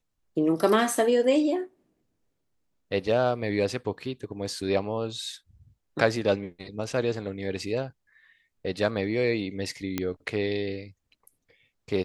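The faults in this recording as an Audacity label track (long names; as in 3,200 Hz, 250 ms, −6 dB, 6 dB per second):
9.980000	9.980000	click −12 dBFS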